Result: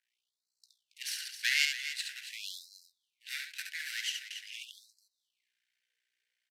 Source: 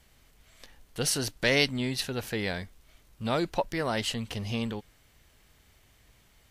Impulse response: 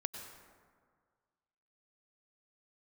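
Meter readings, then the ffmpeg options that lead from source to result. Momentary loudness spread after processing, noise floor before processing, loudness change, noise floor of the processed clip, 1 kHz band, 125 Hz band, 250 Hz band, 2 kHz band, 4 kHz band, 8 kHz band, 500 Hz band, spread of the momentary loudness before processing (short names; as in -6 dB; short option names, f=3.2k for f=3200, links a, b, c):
18 LU, -62 dBFS, -5.0 dB, under -85 dBFS, -27.5 dB, under -40 dB, under -40 dB, -2.0 dB, -3.0 dB, -5.0 dB, under -40 dB, 13 LU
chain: -filter_complex "[0:a]highpass=190,aemphasis=mode=reproduction:type=bsi,agate=range=-12dB:threshold=-58dB:ratio=16:detection=peak,adynamicequalizer=threshold=0.00708:dfrequency=2400:dqfactor=0.75:tfrequency=2400:tqfactor=0.75:attack=5:release=100:ratio=0.375:range=3.5:mode=boostabove:tftype=bell,acrossover=split=700|1500[a][b][c];[a]acompressor=threshold=-35dB:ratio=6[d];[b]acrusher=samples=13:mix=1:aa=0.000001[e];[d][e][c]amix=inputs=3:normalize=0,aeval=exprs='val(0)+0.00447*(sin(2*PI*60*n/s)+sin(2*PI*2*60*n/s)/2+sin(2*PI*3*60*n/s)/3+sin(2*PI*4*60*n/s)/4+sin(2*PI*5*60*n/s)/5)':c=same,aeval=exprs='max(val(0),0)':c=same,aecho=1:1:69.97|277:0.562|0.282,aresample=32000,aresample=44100,asuperstop=centerf=670:order=20:qfactor=0.53,afftfilt=real='re*gte(b*sr/1024,400*pow(4000/400,0.5+0.5*sin(2*PI*0.45*pts/sr)))':imag='im*gte(b*sr/1024,400*pow(4000/400,0.5+0.5*sin(2*PI*0.45*pts/sr)))':win_size=1024:overlap=0.75"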